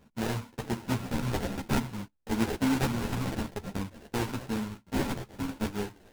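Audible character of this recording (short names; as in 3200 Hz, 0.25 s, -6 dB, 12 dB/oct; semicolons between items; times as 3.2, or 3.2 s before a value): a buzz of ramps at a fixed pitch in blocks of 32 samples; phasing stages 4, 0.53 Hz, lowest notch 400–1500 Hz; aliases and images of a low sample rate 1200 Hz, jitter 20%; a shimmering, thickened sound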